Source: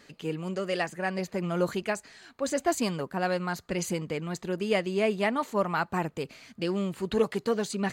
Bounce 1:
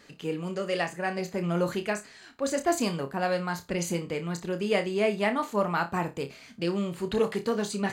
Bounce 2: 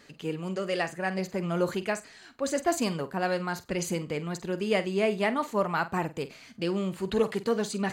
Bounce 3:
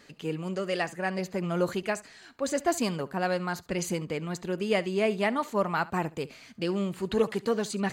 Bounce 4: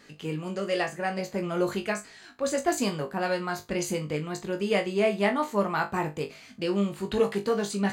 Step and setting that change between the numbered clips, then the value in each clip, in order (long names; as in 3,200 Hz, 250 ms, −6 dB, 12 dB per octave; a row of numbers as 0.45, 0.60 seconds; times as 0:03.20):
flutter between parallel walls, walls apart: 5, 8.1, 12, 3.4 metres